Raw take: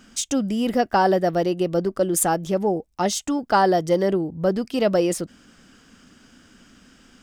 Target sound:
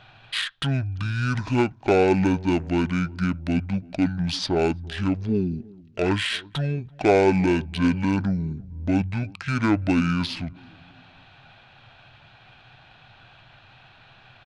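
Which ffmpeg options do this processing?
-filter_complex "[0:a]acrossover=split=3200[s0][s1];[s1]acompressor=threshold=0.0158:ratio=4:attack=1:release=60[s2];[s0][s2]amix=inputs=2:normalize=0,tiltshelf=f=1300:g=-3.5,adynamicsmooth=sensitivity=4:basefreq=5500,crystalizer=i=2.5:c=0,asplit=2[s3][s4];[s4]adelay=168,lowpass=f=1400:p=1,volume=0.0708,asplit=2[s5][s6];[s6]adelay=168,lowpass=f=1400:p=1,volume=0.51,asplit=2[s7][s8];[s8]adelay=168,lowpass=f=1400:p=1,volume=0.51[s9];[s3][s5][s7][s9]amix=inputs=4:normalize=0,asetrate=22050,aresample=44100"

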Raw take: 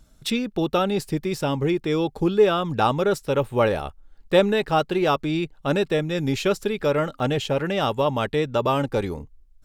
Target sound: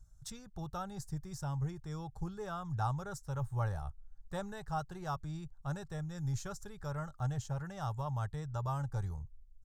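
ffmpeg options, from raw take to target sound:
-af "firequalizer=gain_entry='entry(120,0);entry(240,-26);entry(510,-24);entry(770,-12);entry(1600,-14);entry(2400,-30);entry(6300,-5);entry(11000,-13)':delay=0.05:min_phase=1,volume=0.708"

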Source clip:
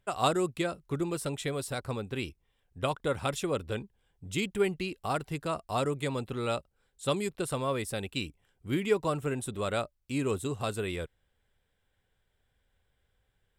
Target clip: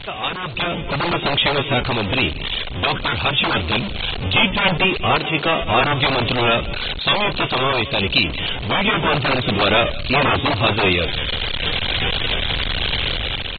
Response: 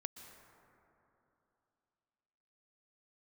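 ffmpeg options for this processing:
-filter_complex "[0:a]aeval=exprs='val(0)+0.5*0.0398*sgn(val(0))':c=same,aecho=1:1:189:0.119,aresample=22050,aresample=44100,asettb=1/sr,asplit=3[s0][s1][s2];[s0]atrim=end=5.174[s3];[s1]atrim=start=5.17:end=5.62,asetpts=PTS-STARTPTS,afade=t=in:d=0.004:c=qsin,afade=t=out:st=0.446:d=0.004:c=qsin,highpass=210[s4];[s2]atrim=start=5.616[s5];[s3][s4]acrossfade=d=0.004:c1=hsin:c2=qsin[s6];[s6][s5]acrossfade=d=0.004:c1=qsin:c2=hsin,acrossover=split=780|3300[s7][s8][s9];[s7]aeval=exprs='(mod(16.8*val(0)+1,2)-1)/16.8':c=same[s10];[s8]aexciter=amount=8.4:drive=2.2:freq=2500[s11];[s9]aemphasis=mode=reproduction:type=riaa[s12];[s10][s11][s12]amix=inputs=3:normalize=0,dynaudnorm=f=190:g=7:m=3.98,volume=0.891" -ar 32000 -c:a aac -b:a 16k

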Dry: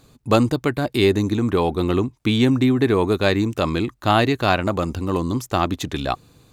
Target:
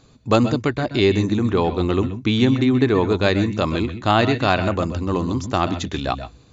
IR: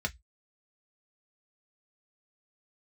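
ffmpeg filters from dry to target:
-filter_complex "[0:a]asplit=2[s0][s1];[1:a]atrim=start_sample=2205,adelay=127[s2];[s1][s2]afir=irnorm=-1:irlink=0,volume=0.168[s3];[s0][s3]amix=inputs=2:normalize=0" -ar 24000 -c:a mp2 -b:a 96k

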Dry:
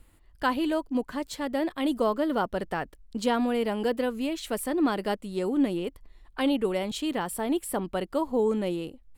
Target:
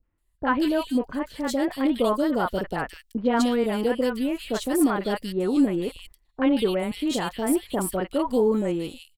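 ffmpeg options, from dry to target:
-filter_complex "[0:a]agate=range=0.112:threshold=0.00562:ratio=16:detection=peak,acrossover=split=730|2600[s0][s1][s2];[s1]adelay=30[s3];[s2]adelay=180[s4];[s0][s3][s4]amix=inputs=3:normalize=0,volume=1.68"

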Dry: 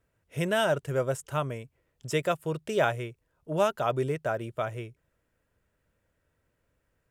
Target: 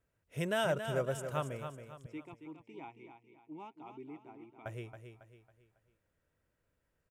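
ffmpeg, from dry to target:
-filter_complex "[0:a]asettb=1/sr,asplit=3[s0][s1][s2];[s0]atrim=end=2.064[s3];[s1]atrim=start=2.06:end=4.66,asetpts=PTS-STARTPTS,afade=t=in:d=0.004:c=qsin,afade=t=out:st=2.596:d=0.004:c=qsin,asplit=3[s4][s5][s6];[s4]bandpass=f=300:t=q:w=8,volume=1[s7];[s5]bandpass=f=870:t=q:w=8,volume=0.501[s8];[s6]bandpass=f=2240:t=q:w=8,volume=0.355[s9];[s7][s8][s9]amix=inputs=3:normalize=0[s10];[s2]atrim=start=4.656[s11];[s3][s10]acrossfade=d=0.004:c1=hsin:c2=qsin[s12];[s12][s11]acrossfade=d=0.004:c1=qsin:c2=hsin,aecho=1:1:275|550|825|1100:0.376|0.147|0.0572|0.0223,volume=0.473"

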